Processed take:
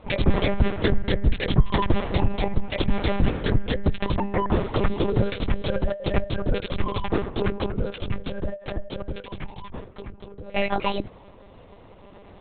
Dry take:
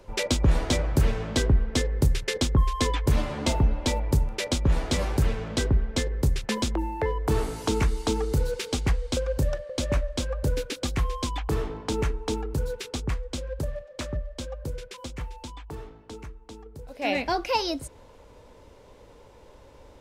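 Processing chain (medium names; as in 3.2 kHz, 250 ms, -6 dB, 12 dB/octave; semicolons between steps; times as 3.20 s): granular stretch 0.62×, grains 46 ms; monotone LPC vocoder at 8 kHz 200 Hz; trim +4.5 dB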